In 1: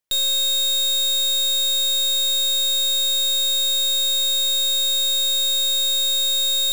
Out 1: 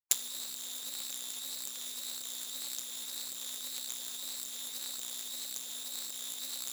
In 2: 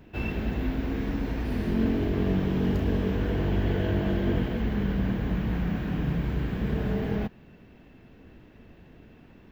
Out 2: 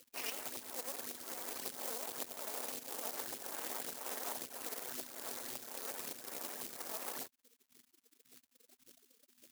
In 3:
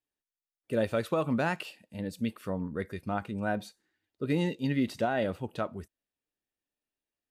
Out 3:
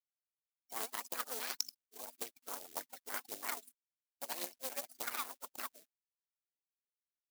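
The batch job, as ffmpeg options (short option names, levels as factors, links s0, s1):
-af "aphaser=in_gain=1:out_gain=1:delay=4.7:decay=0.8:speed=1.8:type=triangular,aeval=exprs='abs(val(0))':c=same,tremolo=f=250:d=0.667,aexciter=amount=2.7:drive=4.9:freq=4400,afftfilt=real='re*gte(hypot(re,im),0.0112)':imag='im*gte(hypot(re,im),0.0112)':win_size=1024:overlap=0.75,acompressor=threshold=0.0501:ratio=16,bass=f=250:g=-12,treble=f=4000:g=11,adynamicsmooth=sensitivity=1:basefreq=940,acrusher=bits=4:mode=log:mix=0:aa=0.000001,aderivative,volume=5.01"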